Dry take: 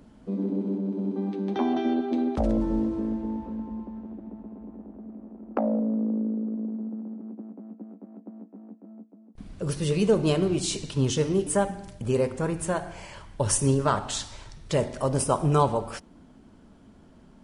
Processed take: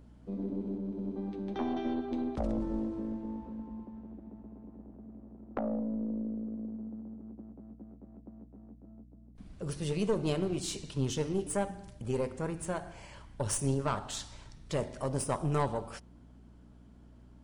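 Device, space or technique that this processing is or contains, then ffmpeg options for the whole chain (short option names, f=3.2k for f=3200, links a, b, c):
valve amplifier with mains hum: -af "aeval=exprs='(tanh(5.01*val(0)+0.5)-tanh(0.5))/5.01':c=same,aeval=exprs='val(0)+0.00355*(sin(2*PI*60*n/s)+sin(2*PI*2*60*n/s)/2+sin(2*PI*3*60*n/s)/3+sin(2*PI*4*60*n/s)/4+sin(2*PI*5*60*n/s)/5)':c=same,volume=-6dB"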